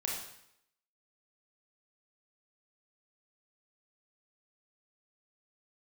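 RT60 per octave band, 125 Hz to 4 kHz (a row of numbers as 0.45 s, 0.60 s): 0.70 s, 0.75 s, 0.75 s, 0.75 s, 0.75 s, 0.70 s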